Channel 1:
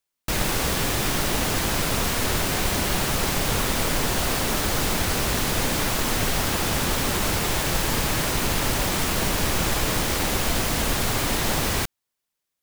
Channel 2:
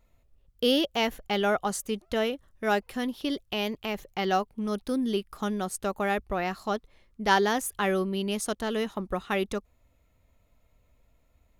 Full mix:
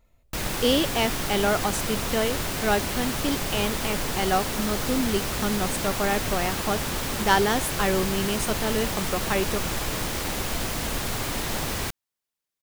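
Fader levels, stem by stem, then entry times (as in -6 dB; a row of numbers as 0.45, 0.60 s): -5.0, +2.0 dB; 0.05, 0.00 s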